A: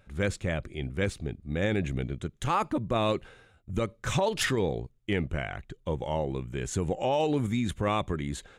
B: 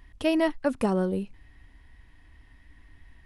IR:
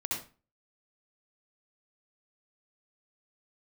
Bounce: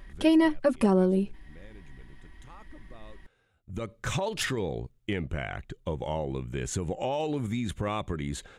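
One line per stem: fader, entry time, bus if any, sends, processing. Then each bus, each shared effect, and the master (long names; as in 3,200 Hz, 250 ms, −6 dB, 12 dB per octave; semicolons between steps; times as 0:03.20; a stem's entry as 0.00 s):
+2.0 dB, 0.00 s, no send, downward compressor 3 to 1, threshold −30 dBFS, peak gain reduction 6.5 dB; automatic ducking −21 dB, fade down 0.30 s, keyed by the second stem
+0.5 dB, 0.00 s, no send, parametric band 300 Hz +14 dB 0.24 octaves; comb filter 5.2 ms, depth 97%; downward compressor 1.5 to 1, threshold −25 dBFS, peak gain reduction 4.5 dB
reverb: not used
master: no processing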